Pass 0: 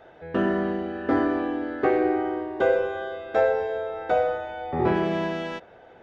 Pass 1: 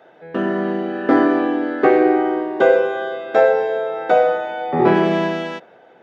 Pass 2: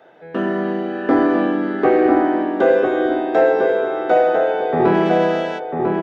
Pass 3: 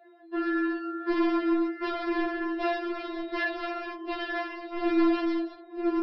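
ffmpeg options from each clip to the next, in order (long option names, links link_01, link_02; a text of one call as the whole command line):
ffmpeg -i in.wav -af "highpass=frequency=150:width=0.5412,highpass=frequency=150:width=1.3066,dynaudnorm=framelen=110:gausssize=13:maxgain=8dB,volume=1.5dB" out.wav
ffmpeg -i in.wav -filter_complex "[0:a]acrossover=split=1200[link_01][link_02];[link_02]alimiter=limit=-22.5dB:level=0:latency=1:release=32[link_03];[link_01][link_03]amix=inputs=2:normalize=0,asoftclip=type=tanh:threshold=-3.5dB,asplit=2[link_04][link_05];[link_05]adelay=997,lowpass=frequency=1800:poles=1,volume=-4dB,asplit=2[link_06][link_07];[link_07]adelay=997,lowpass=frequency=1800:poles=1,volume=0.33,asplit=2[link_08][link_09];[link_09]adelay=997,lowpass=frequency=1800:poles=1,volume=0.33,asplit=2[link_10][link_11];[link_11]adelay=997,lowpass=frequency=1800:poles=1,volume=0.33[link_12];[link_04][link_06][link_08][link_10][link_12]amix=inputs=5:normalize=0" out.wav
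ffmpeg -i in.wav -af "flanger=delay=22.5:depth=6.6:speed=0.53,aresample=11025,asoftclip=type=hard:threshold=-19dB,aresample=44100,afftfilt=real='re*4*eq(mod(b,16),0)':imag='im*4*eq(mod(b,16),0)':win_size=2048:overlap=0.75" out.wav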